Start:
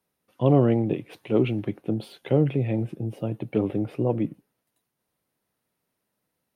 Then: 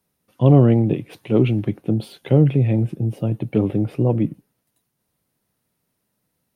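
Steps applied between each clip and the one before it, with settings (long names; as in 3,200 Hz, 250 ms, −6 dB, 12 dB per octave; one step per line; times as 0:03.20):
bass and treble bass +7 dB, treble +4 dB
level +2.5 dB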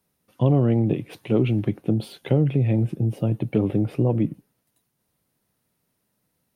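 downward compressor 2.5 to 1, threshold −17 dBFS, peak gain reduction 7.5 dB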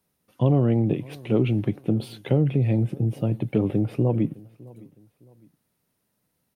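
repeating echo 610 ms, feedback 36%, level −23 dB
level −1 dB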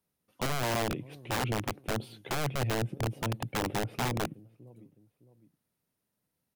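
wrap-around overflow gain 16 dB
level −8.5 dB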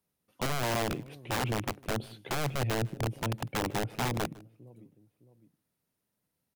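single-tap delay 153 ms −23.5 dB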